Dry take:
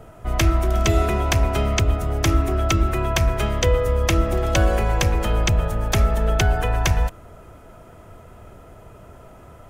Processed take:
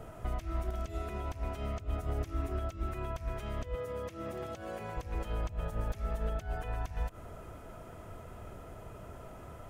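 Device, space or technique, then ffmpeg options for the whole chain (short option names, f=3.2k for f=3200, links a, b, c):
de-esser from a sidechain: -filter_complex "[0:a]asplit=2[a][b];[b]highpass=f=6.9k:p=1,apad=whole_len=427593[c];[a][c]sidechaincompress=threshold=-49dB:ratio=12:attack=0.68:release=94,asettb=1/sr,asplit=3[d][e][f];[d]atrim=end=3.754[g];[e]atrim=start=3.75:end=4.97,asetpts=PTS-STARTPTS,afade=t=in:d=0.004:c=qsin,afade=t=out:st=1.216:d=0.004:c=qsin,highpass=f=100:w=0.5412,highpass=f=100:w=1.3066[h];[f]atrim=start=4.966[i];[g][h]acrossfade=d=0.004:c1=hsin:c2=qsin[j];[j][i]acrossfade=d=0.004:c1=qsin:c2=hsin,volume=-3.5dB"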